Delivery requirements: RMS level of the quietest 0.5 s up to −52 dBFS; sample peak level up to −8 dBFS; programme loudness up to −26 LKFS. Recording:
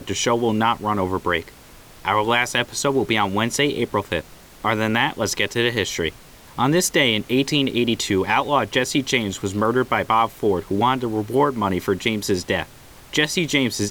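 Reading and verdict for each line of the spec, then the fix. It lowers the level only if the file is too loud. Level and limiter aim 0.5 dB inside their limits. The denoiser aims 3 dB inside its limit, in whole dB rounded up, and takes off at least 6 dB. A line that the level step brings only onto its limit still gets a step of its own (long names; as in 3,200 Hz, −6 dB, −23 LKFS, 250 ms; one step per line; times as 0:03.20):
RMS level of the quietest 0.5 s −45 dBFS: out of spec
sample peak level −5.0 dBFS: out of spec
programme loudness −21.0 LKFS: out of spec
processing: broadband denoise 6 dB, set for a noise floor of −45 dBFS
level −5.5 dB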